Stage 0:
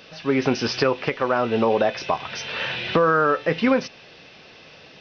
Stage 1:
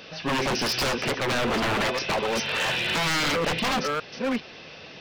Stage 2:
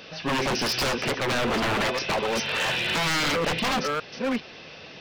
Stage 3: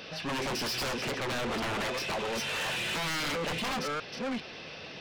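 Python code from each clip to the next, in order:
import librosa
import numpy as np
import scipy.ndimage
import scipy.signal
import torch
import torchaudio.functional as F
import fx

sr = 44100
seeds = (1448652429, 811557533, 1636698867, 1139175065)

y1 = fx.reverse_delay(x, sr, ms=400, wet_db=-9)
y1 = 10.0 ** (-22.0 / 20.0) * (np.abs((y1 / 10.0 ** (-22.0 / 20.0) + 3.0) % 4.0 - 2.0) - 1.0)
y1 = fx.hum_notches(y1, sr, base_hz=60, count=2)
y1 = y1 * librosa.db_to_amplitude(2.5)
y2 = y1
y3 = 10.0 ** (-30.5 / 20.0) * np.tanh(y2 / 10.0 ** (-30.5 / 20.0))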